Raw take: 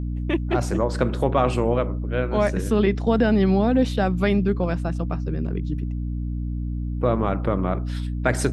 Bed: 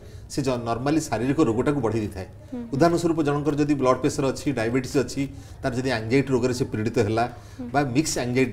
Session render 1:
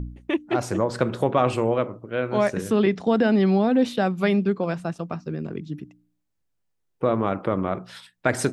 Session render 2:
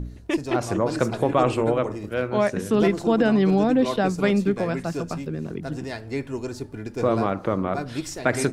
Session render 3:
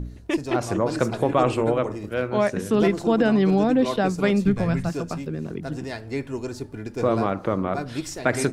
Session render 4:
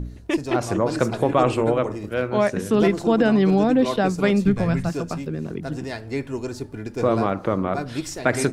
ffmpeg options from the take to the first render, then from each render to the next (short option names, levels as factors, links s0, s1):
-af "bandreject=f=60:t=h:w=4,bandreject=f=120:t=h:w=4,bandreject=f=180:t=h:w=4,bandreject=f=240:t=h:w=4,bandreject=f=300:t=h:w=4"
-filter_complex "[1:a]volume=0.376[s0];[0:a][s0]amix=inputs=2:normalize=0"
-filter_complex "[0:a]asplit=3[s0][s1][s2];[s0]afade=t=out:st=4.44:d=0.02[s3];[s1]asubboost=boost=6.5:cutoff=140,afade=t=in:st=4.44:d=0.02,afade=t=out:st=4.88:d=0.02[s4];[s2]afade=t=in:st=4.88:d=0.02[s5];[s3][s4][s5]amix=inputs=3:normalize=0"
-af "volume=1.19"